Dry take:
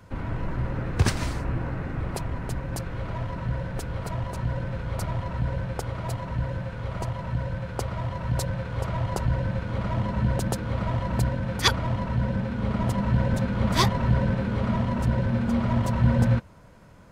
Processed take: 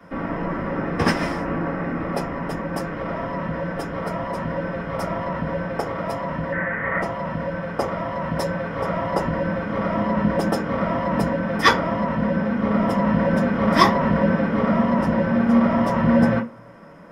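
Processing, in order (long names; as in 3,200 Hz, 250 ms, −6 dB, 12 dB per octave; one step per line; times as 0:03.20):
0:06.52–0:07.01: low-pass with resonance 1,900 Hz, resonance Q 7.5
convolution reverb RT60 0.35 s, pre-delay 3 ms, DRR −7 dB
level −7 dB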